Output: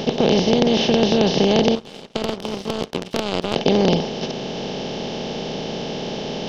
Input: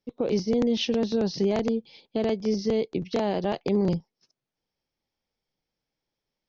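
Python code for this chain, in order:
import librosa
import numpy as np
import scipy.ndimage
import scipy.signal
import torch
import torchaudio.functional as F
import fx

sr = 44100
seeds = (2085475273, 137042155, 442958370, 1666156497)

y = fx.bin_compress(x, sr, power=0.2)
y = fx.power_curve(y, sr, exponent=2.0, at=(1.75, 3.56))
y = y * 10.0 ** (2.5 / 20.0)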